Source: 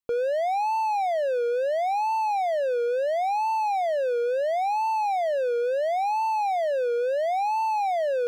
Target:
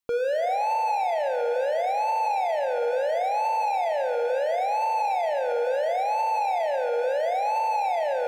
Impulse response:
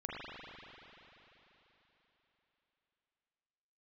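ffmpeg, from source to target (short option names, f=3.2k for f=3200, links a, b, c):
-filter_complex "[0:a]asplit=2[a][b];[b]highpass=f=430:w=0.5412,highpass=f=430:w=1.3066[c];[1:a]atrim=start_sample=2205[d];[c][d]afir=irnorm=-1:irlink=0,volume=-6dB[e];[a][e]amix=inputs=2:normalize=0,alimiter=limit=-19.5dB:level=0:latency=1:release=23,volume=1.5dB"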